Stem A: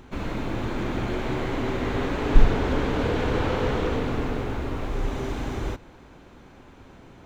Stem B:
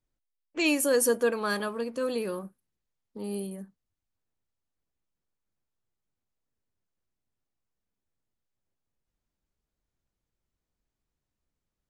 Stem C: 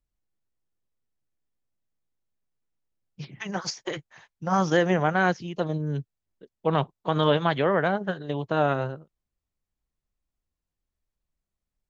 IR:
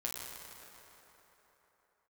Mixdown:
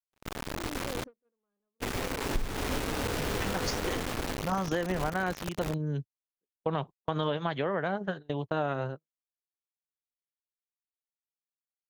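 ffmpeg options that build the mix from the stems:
-filter_complex "[0:a]acrusher=bits=3:mix=0:aa=0.000001,volume=-8dB,asplit=3[link_01][link_02][link_03];[link_01]atrim=end=1.04,asetpts=PTS-STARTPTS,afade=type=out:start_time=1.036:duration=0.004:curve=hsin[link_04];[link_02]atrim=start=1.04:end=1.8,asetpts=PTS-STARTPTS,volume=0[link_05];[link_03]atrim=start=1.8,asetpts=PTS-STARTPTS,afade=type=in:duration=0.004:curve=hsin[link_06];[link_04][link_05][link_06]concat=n=3:v=0:a=1[link_07];[1:a]asoftclip=type=tanh:threshold=-25.5dB,adynamicsmooth=sensitivity=0.5:basefreq=660,volume=-9.5dB[link_08];[2:a]volume=-2.5dB[link_09];[link_07][link_08][link_09]amix=inputs=3:normalize=0,agate=range=-40dB:threshold=-35dB:ratio=16:detection=peak,acompressor=threshold=-26dB:ratio=6"

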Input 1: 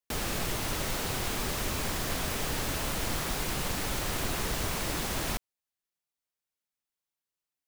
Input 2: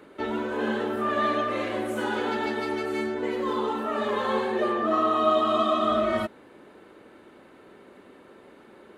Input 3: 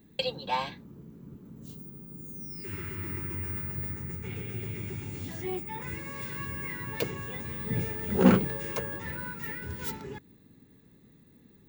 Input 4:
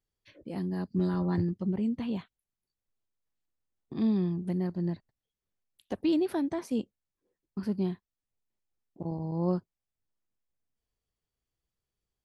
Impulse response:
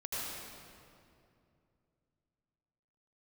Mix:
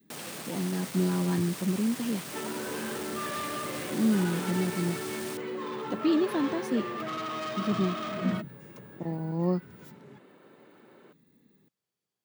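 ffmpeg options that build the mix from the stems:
-filter_complex "[0:a]equalizer=frequency=8700:width=7.4:gain=7.5,asoftclip=type=tanh:threshold=-31dB,volume=-3.5dB[link_01];[1:a]volume=26dB,asoftclip=hard,volume=-26dB,adelay=2150,volume=-5.5dB[link_02];[2:a]acrossover=split=230[link_03][link_04];[link_04]acompressor=threshold=-58dB:ratio=2[link_05];[link_03][link_05]amix=inputs=2:normalize=0,volume=-4.5dB[link_06];[3:a]volume=2dB[link_07];[link_01][link_02][link_06][link_07]amix=inputs=4:normalize=0,highpass=frequency=140:width=0.5412,highpass=frequency=140:width=1.3066,adynamicequalizer=threshold=0.00631:dfrequency=710:dqfactor=1.7:tfrequency=710:tqfactor=1.7:attack=5:release=100:ratio=0.375:range=2:mode=cutabove:tftype=bell"

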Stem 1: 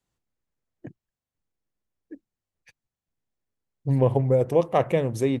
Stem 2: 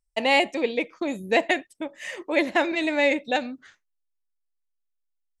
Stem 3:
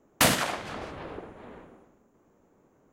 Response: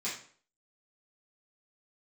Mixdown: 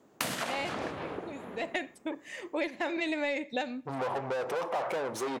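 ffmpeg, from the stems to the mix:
-filter_complex "[0:a]asplit=2[link_01][link_02];[link_02]highpass=frequency=720:poles=1,volume=34dB,asoftclip=type=tanh:threshold=-8dB[link_03];[link_01][link_03]amix=inputs=2:normalize=0,lowpass=frequency=5700:poles=1,volume=-6dB,highpass=frequency=260:poles=1,equalizer=frequency=880:width_type=o:width=1.8:gain=10.5,volume=-19.5dB,asplit=3[link_04][link_05][link_06];[link_05]volume=-18dB[link_07];[1:a]acontrast=90,adelay=250,volume=-10.5dB,afade=type=in:start_time=1.6:duration=0.29:silence=0.266073,asplit=2[link_08][link_09];[link_09]volume=-22.5dB[link_10];[2:a]highpass=110,acompressor=threshold=-31dB:ratio=5,volume=2dB[link_11];[link_06]apad=whole_len=249182[link_12];[link_08][link_12]sidechaincompress=threshold=-48dB:ratio=8:attack=9.6:release=370[link_13];[3:a]atrim=start_sample=2205[link_14];[link_07][link_10]amix=inputs=2:normalize=0[link_15];[link_15][link_14]afir=irnorm=-1:irlink=0[link_16];[link_04][link_13][link_11][link_16]amix=inputs=4:normalize=0,acompressor=threshold=-28dB:ratio=10"

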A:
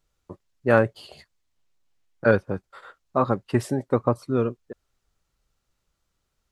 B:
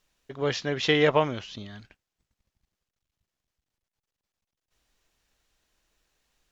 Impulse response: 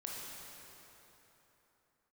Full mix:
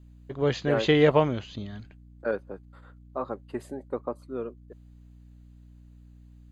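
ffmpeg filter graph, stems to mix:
-filter_complex "[0:a]highpass=350,volume=-9.5dB[link_01];[1:a]aeval=exprs='val(0)+0.002*(sin(2*PI*60*n/s)+sin(2*PI*2*60*n/s)/2+sin(2*PI*3*60*n/s)/3+sin(2*PI*4*60*n/s)/4+sin(2*PI*5*60*n/s)/5)':channel_layout=same,volume=0.5dB[link_02];[link_01][link_02]amix=inputs=2:normalize=0,asuperstop=centerf=5500:order=4:qfactor=6.5,tiltshelf=frequency=710:gain=4.5"

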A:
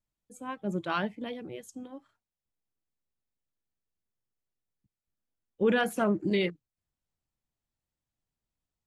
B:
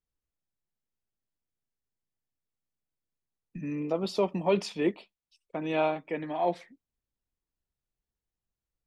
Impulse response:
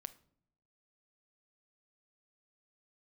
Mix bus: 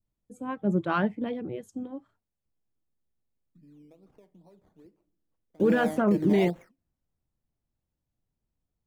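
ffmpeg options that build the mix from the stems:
-filter_complex "[0:a]adynamicequalizer=threshold=0.00708:dfrequency=1500:dqfactor=0.97:tfrequency=1500:tqfactor=0.97:attack=5:release=100:ratio=0.375:range=3:mode=boostabove:tftype=bell,volume=0.5dB,asplit=2[link_01][link_02];[1:a]acompressor=threshold=-31dB:ratio=10,acrusher=samples=13:mix=1:aa=0.000001:lfo=1:lforange=7.8:lforate=2.4,volume=-0.5dB,asplit=2[link_03][link_04];[link_04]volume=-23.5dB[link_05];[link_02]apad=whole_len=390729[link_06];[link_03][link_06]sidechaingate=range=-38dB:threshold=-54dB:ratio=16:detection=peak[link_07];[2:a]atrim=start_sample=2205[link_08];[link_05][link_08]afir=irnorm=-1:irlink=0[link_09];[link_01][link_07][link_09]amix=inputs=3:normalize=0,tiltshelf=frequency=900:gain=7.5,alimiter=limit=-14.5dB:level=0:latency=1:release=13"

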